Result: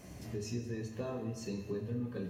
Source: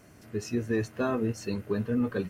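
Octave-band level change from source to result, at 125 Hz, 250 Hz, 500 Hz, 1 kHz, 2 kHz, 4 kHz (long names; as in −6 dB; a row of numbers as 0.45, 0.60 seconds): −5.0, −10.0, −9.5, −12.5, −13.5, −5.5 decibels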